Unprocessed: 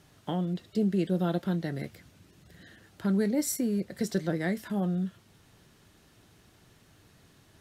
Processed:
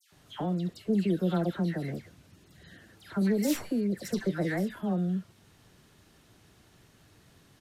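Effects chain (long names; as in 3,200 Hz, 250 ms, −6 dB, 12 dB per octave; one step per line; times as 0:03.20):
stylus tracing distortion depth 0.16 ms
downsampling to 32,000 Hz
all-pass dispersion lows, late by 125 ms, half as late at 1,800 Hz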